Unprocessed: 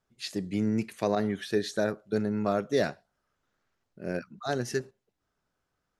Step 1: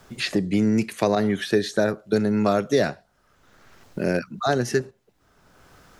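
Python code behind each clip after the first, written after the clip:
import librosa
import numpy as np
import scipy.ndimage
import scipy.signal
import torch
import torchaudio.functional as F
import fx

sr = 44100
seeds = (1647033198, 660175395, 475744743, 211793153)

y = fx.band_squash(x, sr, depth_pct=70)
y = y * 10.0 ** (7.5 / 20.0)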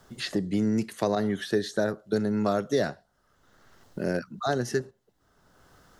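y = fx.peak_eq(x, sr, hz=2400.0, db=-10.5, octaves=0.24)
y = y * 10.0 ** (-5.0 / 20.0)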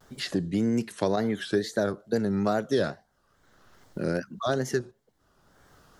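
y = fx.wow_flutter(x, sr, seeds[0], rate_hz=2.1, depth_cents=130.0)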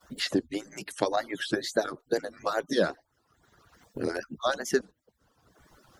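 y = fx.hpss_only(x, sr, part='percussive')
y = y * 10.0 ** (3.0 / 20.0)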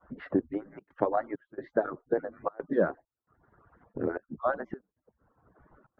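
y = scipy.signal.sosfilt(scipy.signal.butter(4, 1500.0, 'lowpass', fs=sr, output='sos'), x)
y = fx.step_gate(y, sr, bpm=133, pattern='xxxxxxx.xxxx..x', floor_db=-24.0, edge_ms=4.5)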